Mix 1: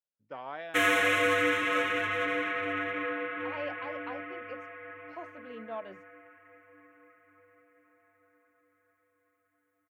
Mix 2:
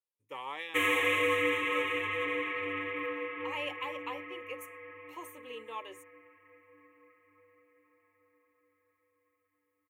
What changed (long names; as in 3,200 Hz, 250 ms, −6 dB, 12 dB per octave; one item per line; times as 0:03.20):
speech: remove head-to-tape spacing loss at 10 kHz 39 dB
master: add phaser with its sweep stopped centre 1,000 Hz, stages 8